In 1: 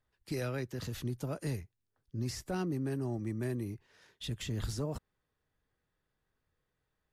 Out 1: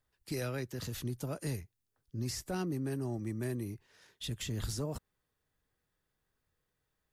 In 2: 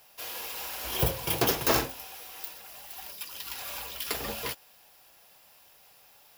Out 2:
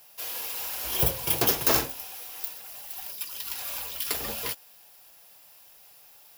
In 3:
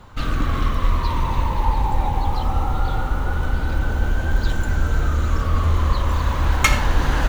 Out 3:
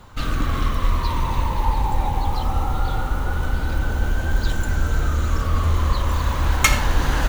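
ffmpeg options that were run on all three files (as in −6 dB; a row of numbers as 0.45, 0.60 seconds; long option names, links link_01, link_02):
-af "highshelf=frequency=5400:gain=7,volume=-1dB"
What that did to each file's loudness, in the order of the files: −0.5, +3.5, −0.5 LU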